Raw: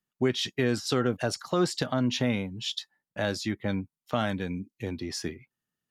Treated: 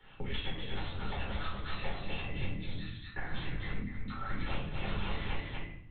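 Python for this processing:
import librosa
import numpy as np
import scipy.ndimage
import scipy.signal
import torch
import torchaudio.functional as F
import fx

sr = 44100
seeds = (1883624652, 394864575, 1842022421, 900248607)

y = fx.highpass(x, sr, hz=190.0, slope=6)
y = fx.low_shelf(y, sr, hz=270.0, db=-2.5)
y = fx.over_compress(y, sr, threshold_db=-36.0, ratio=-0.5)
y = fx.fixed_phaser(y, sr, hz=1300.0, stages=4, at=(2.32, 4.49))
y = (np.mod(10.0 ** (27.5 / 20.0) * y + 1.0, 2.0) - 1.0) / 10.0 ** (27.5 / 20.0)
y = fx.comb_fb(y, sr, f0_hz=670.0, decay_s=0.37, harmonics='all', damping=0.0, mix_pct=90)
y = fx.lpc_vocoder(y, sr, seeds[0], excitation='whisper', order=8)
y = y + 10.0 ** (-6.5 / 20.0) * np.pad(y, (int(240 * sr / 1000.0), 0))[:len(y)]
y = fx.room_shoebox(y, sr, seeds[1], volume_m3=350.0, walls='furnished', distance_m=4.3)
y = fx.band_squash(y, sr, depth_pct=100)
y = F.gain(torch.from_numpy(y), 8.5).numpy()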